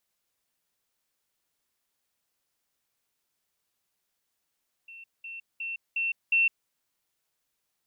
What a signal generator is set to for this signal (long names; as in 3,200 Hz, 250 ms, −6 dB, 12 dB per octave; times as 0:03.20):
level staircase 2,700 Hz −43.5 dBFS, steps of 6 dB, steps 5, 0.16 s 0.20 s